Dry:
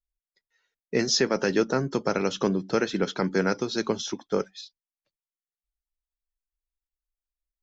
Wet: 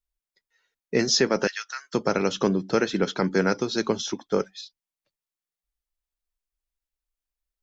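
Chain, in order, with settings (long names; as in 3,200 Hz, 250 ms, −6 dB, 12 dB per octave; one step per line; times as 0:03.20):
0:01.47–0:01.94: high-pass filter 1,500 Hz 24 dB per octave
level +2 dB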